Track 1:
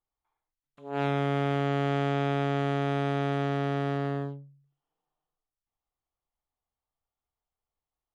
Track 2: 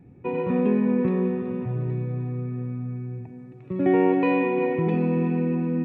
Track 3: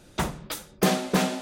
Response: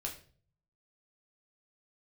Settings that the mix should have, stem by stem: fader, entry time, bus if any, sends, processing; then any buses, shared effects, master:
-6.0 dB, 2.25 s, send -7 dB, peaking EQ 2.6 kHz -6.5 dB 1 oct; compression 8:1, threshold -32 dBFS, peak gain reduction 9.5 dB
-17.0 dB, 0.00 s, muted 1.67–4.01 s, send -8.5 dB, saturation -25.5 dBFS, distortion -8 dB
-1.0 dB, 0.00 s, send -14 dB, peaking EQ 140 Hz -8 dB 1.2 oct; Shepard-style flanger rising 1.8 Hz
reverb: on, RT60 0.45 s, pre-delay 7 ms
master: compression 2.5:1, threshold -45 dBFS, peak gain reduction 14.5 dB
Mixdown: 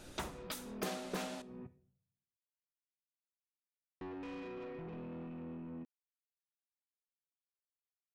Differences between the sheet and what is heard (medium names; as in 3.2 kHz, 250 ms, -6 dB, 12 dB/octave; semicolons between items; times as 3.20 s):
stem 1: muted; stem 3: missing Shepard-style flanger rising 1.8 Hz